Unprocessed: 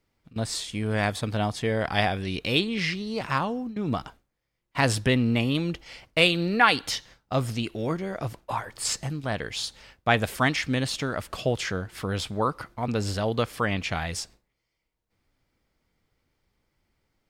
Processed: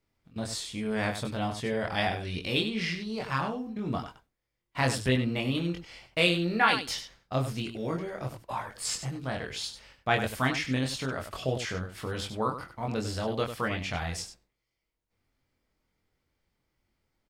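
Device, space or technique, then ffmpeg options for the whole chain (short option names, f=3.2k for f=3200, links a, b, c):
slapback doubling: -filter_complex "[0:a]asplit=3[a][b][c];[b]adelay=23,volume=-3dB[d];[c]adelay=97,volume=-9dB[e];[a][d][e]amix=inputs=3:normalize=0,volume=-6dB"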